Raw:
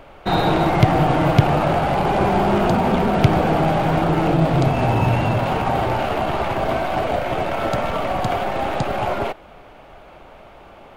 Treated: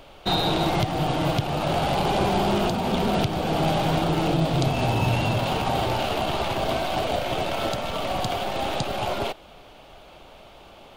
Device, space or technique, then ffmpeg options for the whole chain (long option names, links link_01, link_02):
over-bright horn tweeter: -af "highshelf=frequency=2600:width_type=q:width=1.5:gain=8,alimiter=limit=-7.5dB:level=0:latency=1:release=436,volume=-4dB"